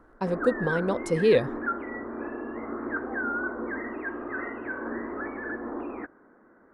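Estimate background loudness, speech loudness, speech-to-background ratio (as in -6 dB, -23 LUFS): -33.5 LUFS, -25.5 LUFS, 8.0 dB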